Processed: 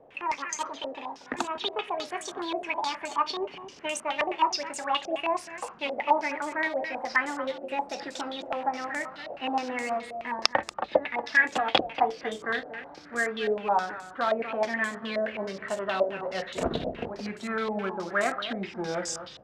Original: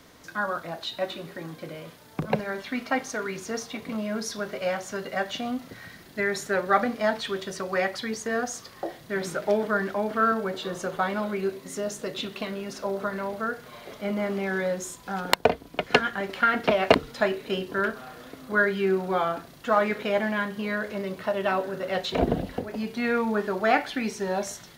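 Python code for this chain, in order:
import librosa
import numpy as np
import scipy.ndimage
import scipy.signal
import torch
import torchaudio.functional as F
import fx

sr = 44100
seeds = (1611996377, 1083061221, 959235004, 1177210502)

p1 = fx.speed_glide(x, sr, from_pct=169, to_pct=86)
p2 = fx.low_shelf(p1, sr, hz=240.0, db=-4.0)
p3 = fx.rider(p2, sr, range_db=5, speed_s=0.5)
p4 = p2 + F.gain(torch.from_numpy(p3), -1.5).numpy()
p5 = fx.quant_float(p4, sr, bits=2)
p6 = p5 + fx.echo_single(p5, sr, ms=235, db=-12.5, dry=0)
p7 = fx.filter_held_lowpass(p6, sr, hz=9.5, low_hz=630.0, high_hz=7600.0)
y = F.gain(torch.from_numpy(p7), -10.5).numpy()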